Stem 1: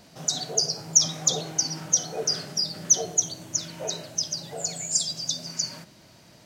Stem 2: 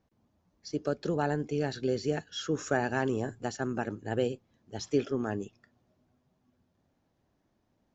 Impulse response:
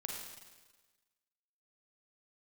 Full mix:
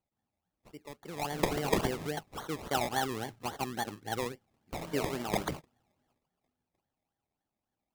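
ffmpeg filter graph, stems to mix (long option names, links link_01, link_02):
-filter_complex "[0:a]adelay=1150,volume=-4dB,asplit=3[link_01][link_02][link_03];[link_01]atrim=end=2.07,asetpts=PTS-STARTPTS,afade=type=out:start_time=2.066:duration=0.004:curve=hsin[link_04];[link_02]atrim=start=2.07:end=4.72,asetpts=PTS-STARTPTS,volume=0[link_05];[link_03]atrim=start=4.72,asetpts=PTS-STARTPTS,afade=type=in:duration=0.004:curve=hsin[link_06];[link_04][link_05][link_06]concat=n=3:v=0:a=1[link_07];[1:a]equalizer=frequency=810:width=5.7:gain=14.5,crystalizer=i=1.5:c=0,volume=-7dB,afade=type=in:start_time=0.99:duration=0.55:silence=0.334965,afade=type=out:start_time=5.92:duration=0.31:silence=0.334965,asplit=2[link_08][link_09];[link_09]apad=whole_len=335256[link_10];[link_07][link_10]sidechaingate=range=-51dB:threshold=-59dB:ratio=16:detection=peak[link_11];[link_11][link_08]amix=inputs=2:normalize=0,acrusher=samples=24:mix=1:aa=0.000001:lfo=1:lforange=14.4:lforate=3.6"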